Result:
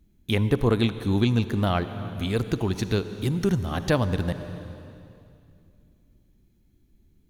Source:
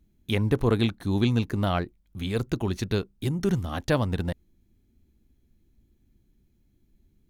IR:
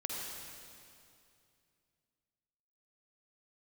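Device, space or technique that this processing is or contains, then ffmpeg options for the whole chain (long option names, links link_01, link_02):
ducked reverb: -filter_complex "[0:a]asplit=3[link_01][link_02][link_03];[1:a]atrim=start_sample=2205[link_04];[link_02][link_04]afir=irnorm=-1:irlink=0[link_05];[link_03]apad=whole_len=321861[link_06];[link_05][link_06]sidechaincompress=threshold=-27dB:ratio=4:attack=42:release=470,volume=-6.5dB[link_07];[link_01][link_07]amix=inputs=2:normalize=0"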